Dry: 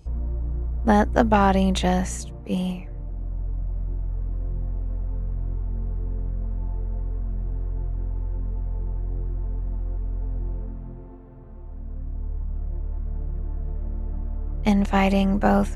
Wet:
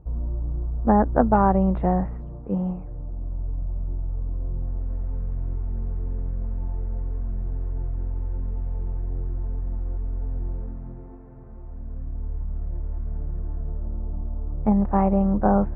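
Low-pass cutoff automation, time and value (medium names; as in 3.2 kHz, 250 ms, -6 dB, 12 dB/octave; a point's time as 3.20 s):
low-pass 24 dB/octave
4.51 s 1.3 kHz
5.06 s 2.6 kHz
8.28 s 2.6 kHz
8.75 s 4.3 kHz
9.12 s 2.3 kHz
13.14 s 2.3 kHz
14.13 s 1.2 kHz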